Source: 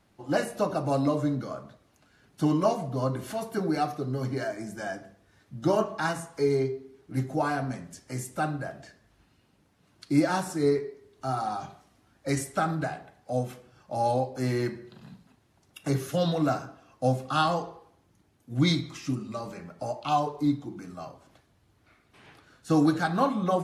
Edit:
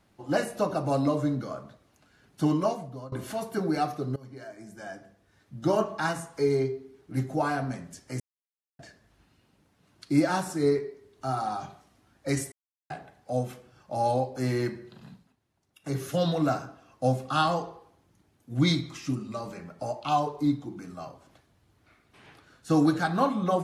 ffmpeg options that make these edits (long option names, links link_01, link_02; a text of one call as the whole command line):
ffmpeg -i in.wav -filter_complex "[0:a]asplit=9[link_01][link_02][link_03][link_04][link_05][link_06][link_07][link_08][link_09];[link_01]atrim=end=3.12,asetpts=PTS-STARTPTS,afade=type=out:start_time=2.49:duration=0.63:silence=0.0944061[link_10];[link_02]atrim=start=3.12:end=4.16,asetpts=PTS-STARTPTS,afade=type=in:duration=0.004:curve=hsin:silence=0.0944061,afade=type=out:start_time=1.036:duration=0.004:curve=hsin:silence=0.112202[link_11];[link_03]atrim=start=4.16:end=8.2,asetpts=PTS-STARTPTS,afade=type=in:duration=1.66:silence=0.112202,afade=type=out:start_time=4.036:duration=0.004:curve=hsin[link_12];[link_04]atrim=start=8.2:end=8.79,asetpts=PTS-STARTPTS,volume=0[link_13];[link_05]atrim=start=8.79:end=12.52,asetpts=PTS-STARTPTS,afade=type=in:duration=0.004:curve=hsin,afade=type=out:start_time=3.726:duration=0.004:curve=hsin[link_14];[link_06]atrim=start=12.52:end=12.9,asetpts=PTS-STARTPTS,volume=0[link_15];[link_07]atrim=start=12.9:end=15.35,asetpts=PTS-STARTPTS,afade=type=in:duration=0.004:curve=hsin,afade=type=out:start_time=2.18:duration=0.27:silence=0.281838[link_16];[link_08]atrim=start=15.35:end=15.8,asetpts=PTS-STARTPTS,volume=-11dB[link_17];[link_09]atrim=start=15.8,asetpts=PTS-STARTPTS,afade=type=in:duration=0.27:silence=0.281838[link_18];[link_10][link_11][link_12][link_13][link_14][link_15][link_16][link_17][link_18]concat=n=9:v=0:a=1" out.wav